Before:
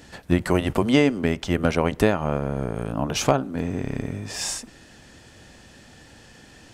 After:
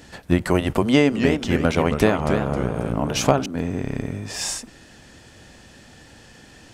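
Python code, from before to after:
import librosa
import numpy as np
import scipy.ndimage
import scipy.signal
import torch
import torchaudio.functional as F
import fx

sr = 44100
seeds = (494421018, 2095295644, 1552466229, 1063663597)

y = fx.echo_warbled(x, sr, ms=273, feedback_pct=39, rate_hz=2.8, cents=217, wet_db=-6.5, at=(0.85, 3.46))
y = y * librosa.db_to_amplitude(1.5)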